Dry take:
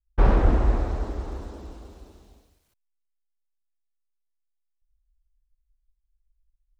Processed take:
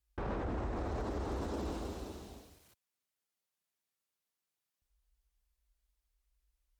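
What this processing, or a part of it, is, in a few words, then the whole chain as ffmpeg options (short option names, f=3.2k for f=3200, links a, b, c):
podcast mastering chain: -af "highpass=81,acompressor=threshold=-35dB:ratio=6,alimiter=level_in=12.5dB:limit=-24dB:level=0:latency=1:release=37,volume=-12.5dB,volume=7dB" -ar 48000 -c:a libmp3lame -b:a 96k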